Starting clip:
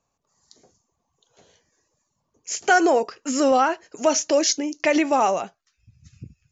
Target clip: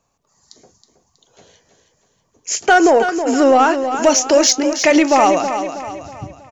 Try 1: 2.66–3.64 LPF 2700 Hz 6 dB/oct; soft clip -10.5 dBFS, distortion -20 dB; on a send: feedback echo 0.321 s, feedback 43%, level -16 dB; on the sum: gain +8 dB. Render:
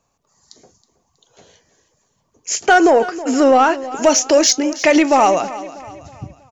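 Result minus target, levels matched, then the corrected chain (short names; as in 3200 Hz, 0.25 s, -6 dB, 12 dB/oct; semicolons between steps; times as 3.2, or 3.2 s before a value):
echo-to-direct -7 dB
2.66–3.64 LPF 2700 Hz 6 dB/oct; soft clip -10.5 dBFS, distortion -20 dB; on a send: feedback echo 0.321 s, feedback 43%, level -9 dB; on the sum: gain +8 dB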